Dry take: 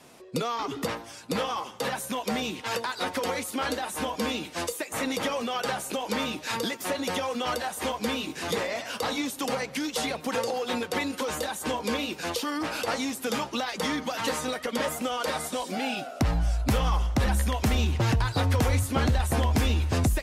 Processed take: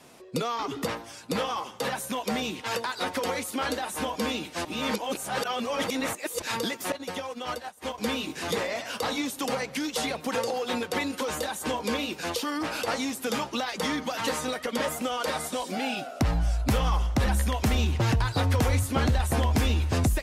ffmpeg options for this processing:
-filter_complex "[0:a]asettb=1/sr,asplit=3[a][b][c];[a]atrim=end=6.924[d];[b]atrim=start=6.92:end=7.98,asetpts=PTS-STARTPTS,afade=t=in:d=0.004:c=qsin,afade=t=out:st=1.056:d=0.004:c=qsin,agate=range=-33dB:threshold=-25dB:ratio=3:release=100:detection=peak[e];[c]atrim=start=7.976[f];[d][e]acrossfade=d=0.004:c1=hsin:c2=qsin[g];[g][f]acrossfade=d=0.004:c1=qsin:c2=hsin,asplit=3[h][i][j];[h]atrim=end=4.652[k];[i]atrim=start=4.648:end=6.422,asetpts=PTS-STARTPTS,areverse[l];[j]atrim=start=6.418[m];[k][l]acrossfade=d=0.004:c1=hsin:c2=hsin[n];[n][m]acrossfade=d=0.004:c1=hsin:c2=hsin"

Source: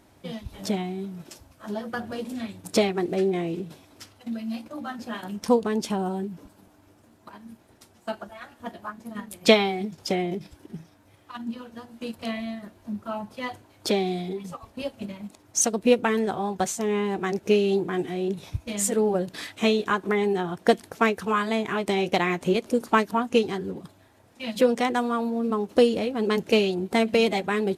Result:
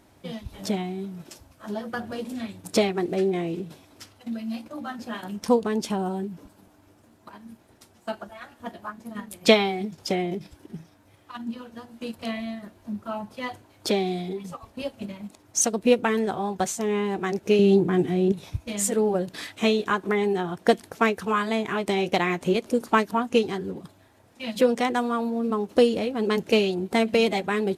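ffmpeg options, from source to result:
-filter_complex "[0:a]asettb=1/sr,asplit=3[a][b][c];[a]atrim=end=17.594[d];[b]atrim=start=17.59:end=18.32,asetpts=PTS-STARTPTS,afade=t=in:d=0.004:c=qsin,afade=t=out:st=0.726:d=0.004:c=qsin,equalizer=f=140:t=o:w=2.7:g=9.5[e];[c]atrim=start=18.316[f];[d][e]acrossfade=d=0.004:c1=hsin:c2=qsin[g];[g][f]acrossfade=d=0.004:c1=qsin:c2=hsin"

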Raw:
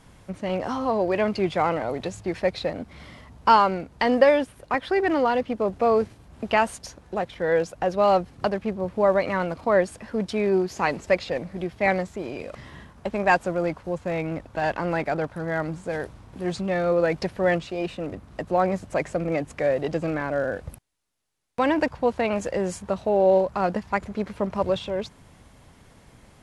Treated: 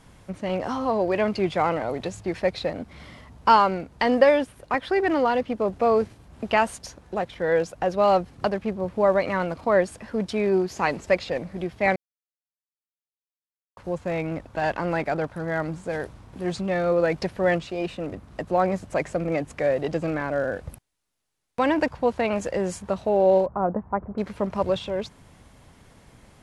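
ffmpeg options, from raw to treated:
-filter_complex "[0:a]asettb=1/sr,asplit=3[a][b][c];[a]atrim=end=23.464[d];[b]atrim=start=23.46:end=24.18,asetpts=PTS-STARTPTS,afade=t=in:d=0.004:c=qsin,afade=t=out:st=0.716:d=0.004:c=qsin,lowpass=f=1.2k:w=0.5412,lowpass=f=1.2k:w=1.3066[e];[c]atrim=start=24.176[f];[d][e]acrossfade=d=0.004:c1=hsin:c2=qsin[g];[g][f]acrossfade=d=0.004:c1=qsin:c2=hsin,asplit=3[h][i][j];[h]atrim=end=11.96,asetpts=PTS-STARTPTS,afade=t=out:st=11.956:d=0.004:c=hsin[k];[i]atrim=start=11.96:end=13.77,asetpts=PTS-STARTPTS,volume=0[l];[j]atrim=start=13.77,asetpts=PTS-STARTPTS,afade=t=in:d=0.004:c=hsin[m];[k][l][m]concat=n=3:v=0:a=1"

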